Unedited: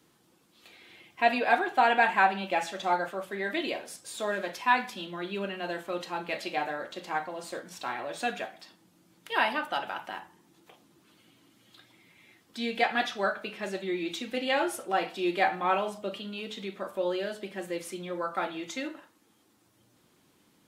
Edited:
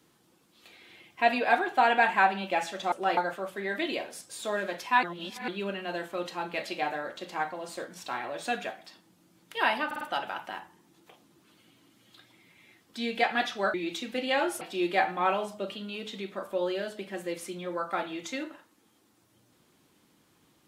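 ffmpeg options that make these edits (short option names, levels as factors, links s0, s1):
-filter_complex "[0:a]asplit=10[s0][s1][s2][s3][s4][s5][s6][s7][s8][s9];[s0]atrim=end=2.922[s10];[s1]atrim=start=14.798:end=15.052[s11];[s2]atrim=start=2.918:end=4.782[s12];[s3]atrim=start=4.778:end=5.232,asetpts=PTS-STARTPTS,areverse[s13];[s4]atrim=start=5.228:end=9.662[s14];[s5]atrim=start=9.608:end=9.662[s15];[s6]atrim=start=9.608:end=9.662[s16];[s7]atrim=start=9.608:end=13.342[s17];[s8]atrim=start=13.928:end=14.802[s18];[s9]atrim=start=15.048[s19];[s10][s11]acrossfade=d=0.004:c1=hsin:c2=hsin[s20];[s20][s12]acrossfade=d=0.004:c1=hsin:c2=hsin[s21];[s21][s13]acrossfade=d=0.004:c1=hsin:c2=hsin[s22];[s22][s14]acrossfade=d=0.004:c1=hsin:c2=hsin[s23];[s23][s15]acrossfade=d=0.004:c1=hsin:c2=hsin[s24];[s24][s16]acrossfade=d=0.004:c1=hsin:c2=hsin[s25];[s25][s17]acrossfade=d=0.004:c1=hsin:c2=hsin[s26];[s26][s18]acrossfade=d=0.004:c1=hsin:c2=hsin[s27];[s27][s19]acrossfade=d=0.004:c1=hsin:c2=hsin"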